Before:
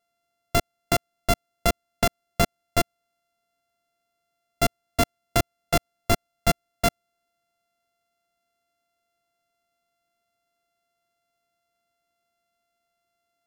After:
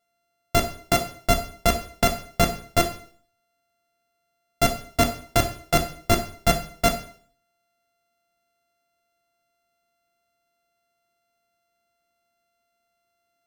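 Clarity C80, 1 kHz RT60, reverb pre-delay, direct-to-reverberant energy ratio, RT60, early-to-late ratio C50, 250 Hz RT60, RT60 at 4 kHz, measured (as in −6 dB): 15.0 dB, 0.50 s, 11 ms, 4.5 dB, 0.50 s, 10.5 dB, 0.55 s, 0.50 s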